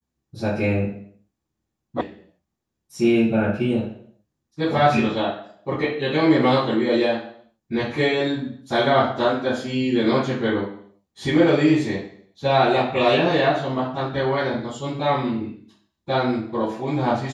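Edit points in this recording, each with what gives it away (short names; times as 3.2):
2.01 sound cut off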